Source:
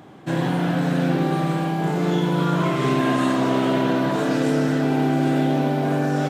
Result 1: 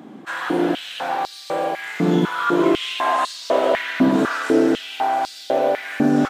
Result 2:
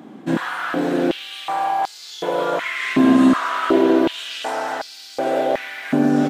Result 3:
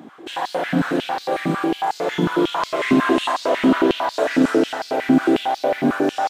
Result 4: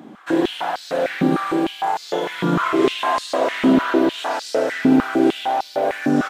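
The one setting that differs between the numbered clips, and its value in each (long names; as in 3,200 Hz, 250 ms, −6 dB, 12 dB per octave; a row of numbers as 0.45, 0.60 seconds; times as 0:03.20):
high-pass on a step sequencer, speed: 4, 2.7, 11, 6.6 Hertz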